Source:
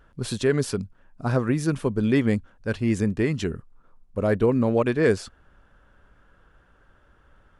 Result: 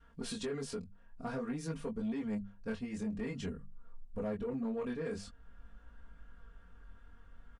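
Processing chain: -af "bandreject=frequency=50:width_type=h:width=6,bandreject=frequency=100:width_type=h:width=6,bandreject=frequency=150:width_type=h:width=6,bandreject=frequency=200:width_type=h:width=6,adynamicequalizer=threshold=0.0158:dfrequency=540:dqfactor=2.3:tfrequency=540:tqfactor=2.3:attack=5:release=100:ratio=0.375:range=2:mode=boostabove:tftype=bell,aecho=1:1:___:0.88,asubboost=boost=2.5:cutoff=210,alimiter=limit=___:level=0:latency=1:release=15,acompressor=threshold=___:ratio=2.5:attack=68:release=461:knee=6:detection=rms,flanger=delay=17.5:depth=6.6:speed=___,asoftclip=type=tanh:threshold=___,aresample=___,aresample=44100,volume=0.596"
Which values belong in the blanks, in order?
4.3, 0.237, 0.0282, 0.5, 0.0531, 22050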